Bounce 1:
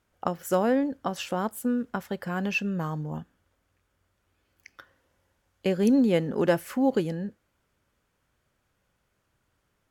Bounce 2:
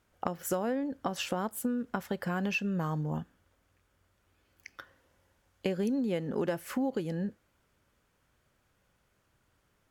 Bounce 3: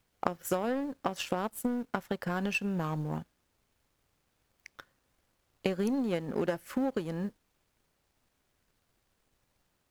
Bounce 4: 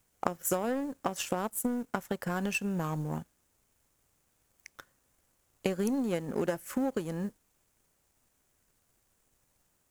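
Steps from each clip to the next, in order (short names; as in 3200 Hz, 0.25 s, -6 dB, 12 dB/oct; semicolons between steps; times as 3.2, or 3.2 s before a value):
compressor 6:1, threshold -30 dBFS, peak gain reduction 12.5 dB; gain +1.5 dB
added noise pink -63 dBFS; power-law curve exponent 1.4; gain +5.5 dB
resonant high shelf 5600 Hz +6.5 dB, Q 1.5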